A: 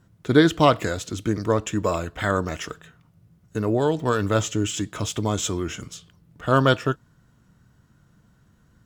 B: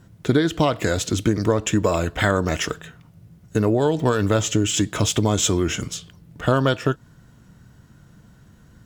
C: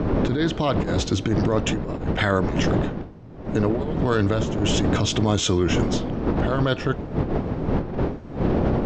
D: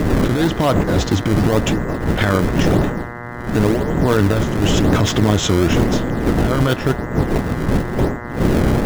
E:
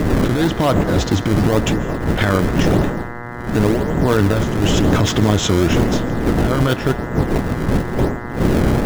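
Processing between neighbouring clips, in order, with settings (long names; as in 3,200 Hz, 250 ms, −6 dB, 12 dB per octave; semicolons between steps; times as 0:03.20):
parametric band 1,200 Hz −3.5 dB 0.54 octaves; downward compressor 12 to 1, threshold −23 dBFS, peak gain reduction 13.5 dB; level +8.5 dB
wind on the microphone 330 Hz −18 dBFS; compressor whose output falls as the input rises −19 dBFS, ratio −1; low-pass filter 5,900 Hz 24 dB per octave; level −2.5 dB
in parallel at −5 dB: sample-and-hold swept by an LFO 28×, swing 160% 0.95 Hz; on the sum: hum with harmonics 120 Hz, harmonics 17, −34 dBFS −1 dB per octave; level +2.5 dB
convolution reverb RT60 0.60 s, pre-delay 107 ms, DRR 17 dB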